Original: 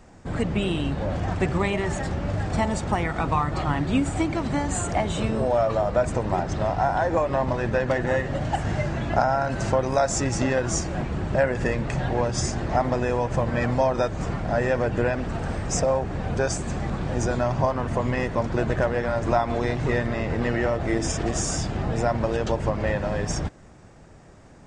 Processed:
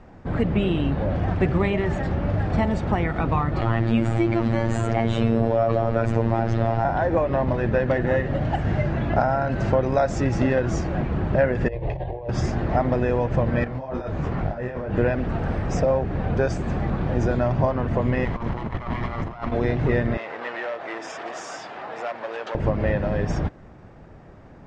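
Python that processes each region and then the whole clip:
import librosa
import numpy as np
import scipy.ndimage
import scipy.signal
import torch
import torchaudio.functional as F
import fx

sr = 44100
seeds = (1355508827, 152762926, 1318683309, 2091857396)

y = fx.chain(x, sr, fx.robotise(hz=114.0),
    fx.env_flatten(amount_pct=50), at=(3.61, 6.85))
y = fx.chain(y, sr, fx.over_compress(threshold_db=-28.0, ratio=-0.5),
    fx.air_absorb(metres=240.0),
    fx.fixed_phaser(hz=560.0, stages=4), at=(11.68, 12.29))
y = fx.chain(y, sr, fx.over_compress(threshold_db=-28.0, ratio=-1.0),
    fx.detune_double(cents=41), at=(13.64, 14.94))
y = fx.chain(y, sr, fx.lower_of_two(delay_ms=0.98),
    fx.over_compress(threshold_db=-30.0, ratio=-0.5), at=(18.25, 19.52))
y = fx.chain(y, sr, fx.overload_stage(gain_db=20.5),
    fx.highpass(hz=740.0, slope=12), at=(20.17, 22.55))
y = fx.dynamic_eq(y, sr, hz=970.0, q=1.3, threshold_db=-35.0, ratio=4.0, max_db=-5)
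y = scipy.signal.sosfilt(scipy.signal.butter(2, 4200.0, 'lowpass', fs=sr, output='sos'), y)
y = fx.high_shelf(y, sr, hz=3100.0, db=-9.5)
y = F.gain(torch.from_numpy(y), 3.5).numpy()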